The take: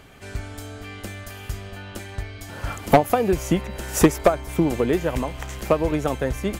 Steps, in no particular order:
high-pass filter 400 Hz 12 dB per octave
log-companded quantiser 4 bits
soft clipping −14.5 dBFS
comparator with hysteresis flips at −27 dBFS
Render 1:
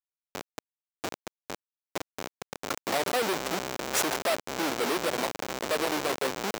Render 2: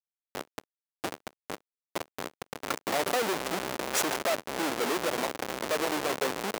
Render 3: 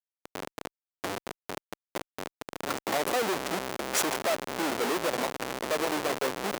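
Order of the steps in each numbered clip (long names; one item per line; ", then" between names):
comparator with hysteresis, then soft clipping, then high-pass filter, then log-companded quantiser
comparator with hysteresis, then soft clipping, then log-companded quantiser, then high-pass filter
log-companded quantiser, then comparator with hysteresis, then high-pass filter, then soft clipping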